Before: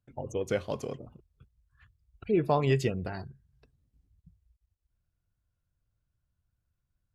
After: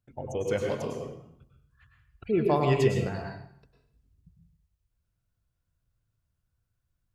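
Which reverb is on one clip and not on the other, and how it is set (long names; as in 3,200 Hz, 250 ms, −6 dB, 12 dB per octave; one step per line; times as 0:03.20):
dense smooth reverb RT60 0.66 s, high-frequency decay 0.9×, pre-delay 90 ms, DRR 1 dB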